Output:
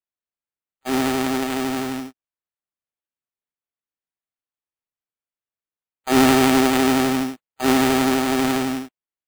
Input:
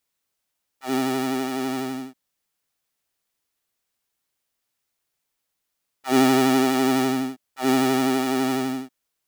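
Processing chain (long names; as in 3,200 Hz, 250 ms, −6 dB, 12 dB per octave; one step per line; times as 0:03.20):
noise gate −36 dBFS, range −31 dB
high-shelf EQ 5,500 Hz +7 dB
bad sample-rate conversion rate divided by 8×, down none, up hold
level +2.5 dB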